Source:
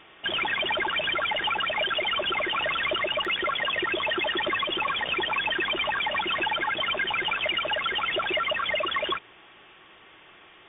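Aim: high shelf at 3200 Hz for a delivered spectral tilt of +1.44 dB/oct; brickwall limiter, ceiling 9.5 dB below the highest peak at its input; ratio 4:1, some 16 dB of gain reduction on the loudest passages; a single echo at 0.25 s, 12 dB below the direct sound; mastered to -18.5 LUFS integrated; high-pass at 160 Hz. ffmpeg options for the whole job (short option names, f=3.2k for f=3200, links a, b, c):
-af "highpass=160,highshelf=f=3.2k:g=-4,acompressor=threshold=-45dB:ratio=4,alimiter=level_in=18dB:limit=-24dB:level=0:latency=1,volume=-18dB,aecho=1:1:250:0.251,volume=28.5dB"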